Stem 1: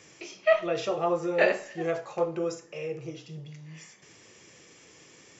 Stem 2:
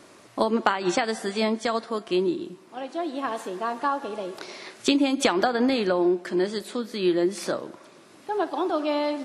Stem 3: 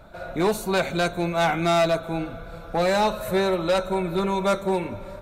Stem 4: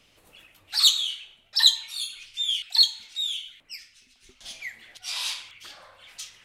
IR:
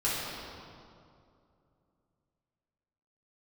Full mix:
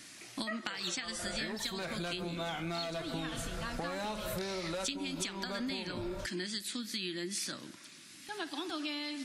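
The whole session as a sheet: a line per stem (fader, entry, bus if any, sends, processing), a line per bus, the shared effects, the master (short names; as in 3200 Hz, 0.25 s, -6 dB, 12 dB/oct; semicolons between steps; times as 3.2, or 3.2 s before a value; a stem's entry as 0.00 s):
-12.5 dB, 0.00 s, no send, band shelf 1600 Hz +11.5 dB 1 oct
-4.0 dB, 0.00 s, no send, EQ curve 290 Hz 0 dB, 430 Hz -14 dB, 1100 Hz -7 dB, 1800 Hz +5 dB, 3400 Hz +8 dB, 4900 Hz +10 dB
+0.5 dB, 1.05 s, no send, compressor, threshold -28 dBFS, peak gain reduction 10 dB
-9.0 dB, 0.00 s, no send, resonant high-pass 710 Hz; tilt -3 dB/oct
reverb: off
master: bell 600 Hz -3.5 dB 1.8 oct; compressor 10:1, threshold -34 dBFS, peak gain reduction 17.5 dB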